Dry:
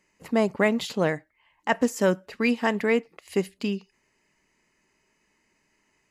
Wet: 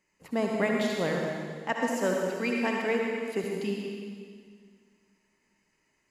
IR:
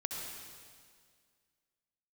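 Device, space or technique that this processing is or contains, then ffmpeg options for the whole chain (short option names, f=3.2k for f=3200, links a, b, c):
stairwell: -filter_complex "[1:a]atrim=start_sample=2205[a];[0:a][a]afir=irnorm=-1:irlink=0,asettb=1/sr,asplit=3[b][c][d];[b]atrim=end=1.724[e];[c]atrim=start=1.72:end=3.44,asetpts=PTS-STARTPTS,afade=t=in:d=0.004:c=qsin,afade=t=out:st=1.716:d=0.004:c=qsin,highpass=200[f];[d]atrim=start=3.436[g];[e][f]acrossfade=d=0.004:c1=hsin:c2=qsin[h];[h][g]acrossfade=d=0.004:c1=qsin:c2=hsin,volume=-5dB"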